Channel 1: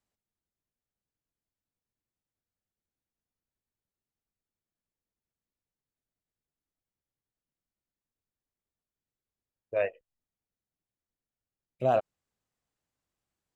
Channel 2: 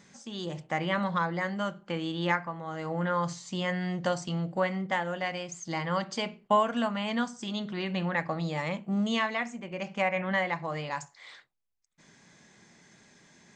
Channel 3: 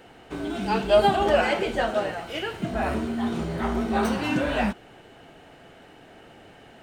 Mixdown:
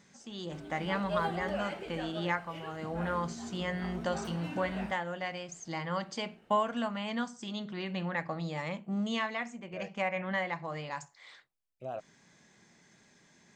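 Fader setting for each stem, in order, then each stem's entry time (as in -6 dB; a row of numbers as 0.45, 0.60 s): -14.5, -4.5, -16.5 dB; 0.00, 0.00, 0.20 s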